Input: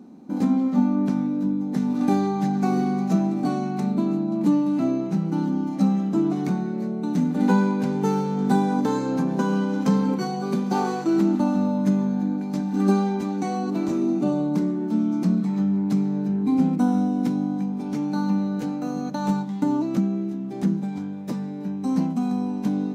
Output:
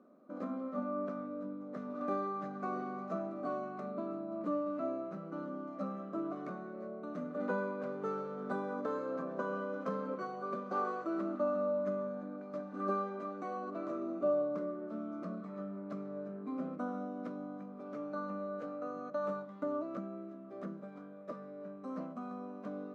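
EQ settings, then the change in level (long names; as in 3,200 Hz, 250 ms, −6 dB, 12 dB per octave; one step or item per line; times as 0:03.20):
pair of resonant band-passes 850 Hz, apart 0.99 octaves
+1.0 dB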